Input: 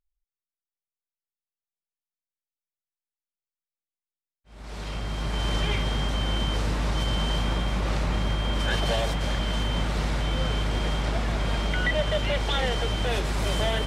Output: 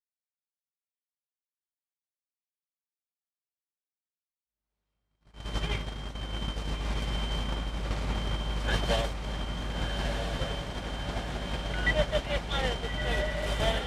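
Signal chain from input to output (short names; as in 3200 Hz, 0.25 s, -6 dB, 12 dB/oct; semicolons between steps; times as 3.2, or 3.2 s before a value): gate -23 dBFS, range -51 dB; on a send: diffused feedback echo 1.314 s, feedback 59%, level -4 dB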